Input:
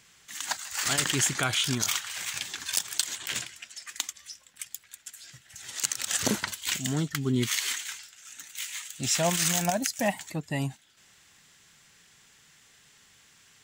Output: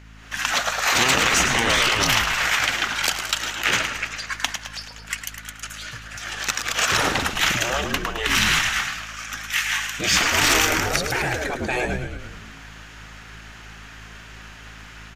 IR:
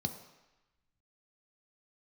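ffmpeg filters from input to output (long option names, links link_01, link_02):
-filter_complex "[0:a]dynaudnorm=framelen=140:gausssize=3:maxgain=10.5dB,bass=frequency=250:gain=-9,treble=frequency=4000:gain=-15,aeval=exprs='val(0)+0.00224*(sin(2*PI*60*n/s)+sin(2*PI*2*60*n/s)/2+sin(2*PI*3*60*n/s)/3+sin(2*PI*4*60*n/s)/4+sin(2*PI*5*60*n/s)/5)':channel_layout=same,asetrate=39690,aresample=44100,asplit=2[link_01][link_02];[link_02]asoftclip=type=tanh:threshold=-22dB,volume=-4dB[link_03];[link_01][link_03]amix=inputs=2:normalize=0,asplit=8[link_04][link_05][link_06][link_07][link_08][link_09][link_10][link_11];[link_05]adelay=107,afreqshift=-57,volume=-9.5dB[link_12];[link_06]adelay=214,afreqshift=-114,volume=-14.1dB[link_13];[link_07]adelay=321,afreqshift=-171,volume=-18.7dB[link_14];[link_08]adelay=428,afreqshift=-228,volume=-23.2dB[link_15];[link_09]adelay=535,afreqshift=-285,volume=-27.8dB[link_16];[link_10]adelay=642,afreqshift=-342,volume=-32.4dB[link_17];[link_11]adelay=749,afreqshift=-399,volume=-37dB[link_18];[link_04][link_12][link_13][link_14][link_15][link_16][link_17][link_18]amix=inputs=8:normalize=0,afftfilt=real='re*lt(hypot(re,im),0.282)':imag='im*lt(hypot(re,im),0.282)':win_size=1024:overlap=0.75,bandreject=frequency=1000:width=28,volume=5dB"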